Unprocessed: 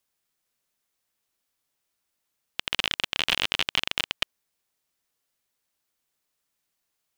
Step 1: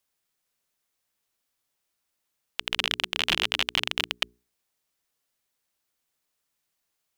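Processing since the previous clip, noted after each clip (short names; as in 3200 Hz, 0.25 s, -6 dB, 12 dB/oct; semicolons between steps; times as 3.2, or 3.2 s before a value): notches 60/120/180/240/300/360/420 Hz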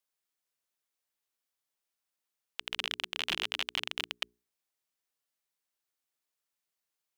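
low shelf 190 Hz -8.5 dB; gain -8 dB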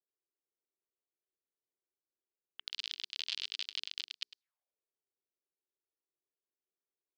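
auto-wah 370–4600 Hz, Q 4.2, up, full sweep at -43 dBFS; echo 0.103 s -16 dB; gain +5 dB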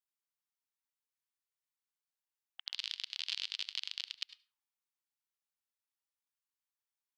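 brick-wall FIR high-pass 780 Hz; reverb RT60 0.35 s, pre-delay 67 ms, DRR 17 dB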